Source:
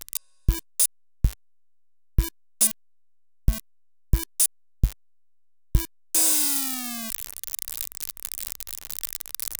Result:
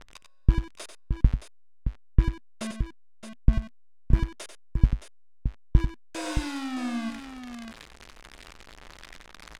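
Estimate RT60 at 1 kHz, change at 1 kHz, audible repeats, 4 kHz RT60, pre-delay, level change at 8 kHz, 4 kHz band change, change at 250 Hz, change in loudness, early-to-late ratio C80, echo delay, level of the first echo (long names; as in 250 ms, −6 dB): no reverb audible, +2.5 dB, 2, no reverb audible, no reverb audible, −23.0 dB, −9.5 dB, +5.0 dB, −5.0 dB, no reverb audible, 92 ms, −8.5 dB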